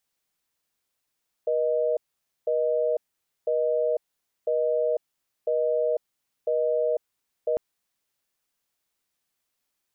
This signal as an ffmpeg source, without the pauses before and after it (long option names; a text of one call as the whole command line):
ffmpeg -f lavfi -i "aevalsrc='0.0631*(sin(2*PI*480*t)+sin(2*PI*620*t))*clip(min(mod(t,1),0.5-mod(t,1))/0.005,0,1)':duration=6.1:sample_rate=44100" out.wav